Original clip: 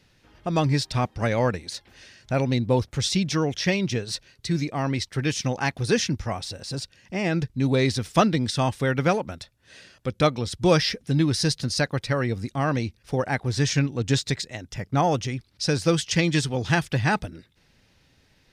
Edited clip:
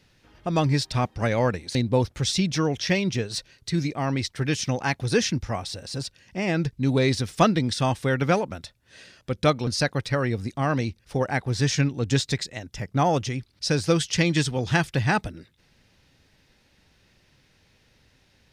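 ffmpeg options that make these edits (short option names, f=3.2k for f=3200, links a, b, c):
-filter_complex "[0:a]asplit=3[a][b][c];[a]atrim=end=1.752[d];[b]atrim=start=2.518:end=10.442[e];[c]atrim=start=11.648[f];[d][e]acrossfade=d=0.004:c1=hsin:c2=hsin[g];[g][f]acrossfade=d=0.004:c1=hsin:c2=hsin"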